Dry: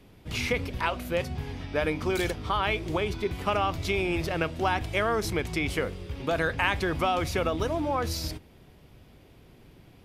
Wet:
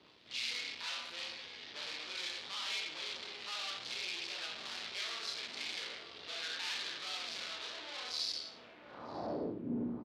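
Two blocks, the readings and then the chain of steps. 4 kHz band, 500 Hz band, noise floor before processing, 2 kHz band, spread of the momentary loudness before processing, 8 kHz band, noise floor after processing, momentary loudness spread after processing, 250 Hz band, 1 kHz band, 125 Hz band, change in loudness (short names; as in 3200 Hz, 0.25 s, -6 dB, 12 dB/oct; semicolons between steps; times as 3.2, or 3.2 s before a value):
-0.5 dB, -19.0 dB, -55 dBFS, -11.5 dB, 6 LU, -5.5 dB, -56 dBFS, 7 LU, -13.0 dB, -18.5 dB, under -20 dB, -11.0 dB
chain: wind noise 260 Hz -31 dBFS; HPF 60 Hz 24 dB/oct; air absorption 75 m; doubler 17 ms -9 dB; Schroeder reverb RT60 0.65 s, combs from 26 ms, DRR -2.5 dB; tube stage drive 33 dB, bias 0.7; band-pass sweep 4100 Hz -> 270 Hz, 8.5–9.64; on a send: narrowing echo 0.947 s, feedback 64%, band-pass 390 Hz, level -5.5 dB; on the sum: gain +6.5 dB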